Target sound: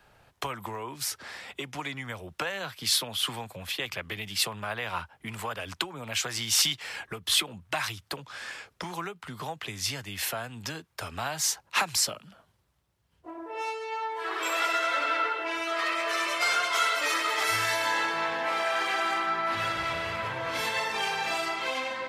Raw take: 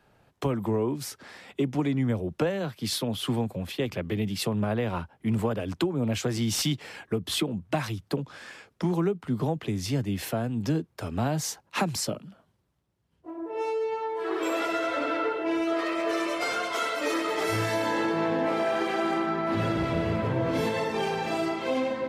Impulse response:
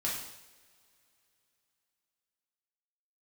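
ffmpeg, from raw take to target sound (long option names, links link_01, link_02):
-filter_complex "[0:a]equalizer=frequency=240:width_type=o:width=2.4:gain=-9.5,acrossover=split=830|4000[link_01][link_02][link_03];[link_01]acompressor=threshold=-46dB:ratio=6[link_04];[link_04][link_02][link_03]amix=inputs=3:normalize=0,volume=6dB"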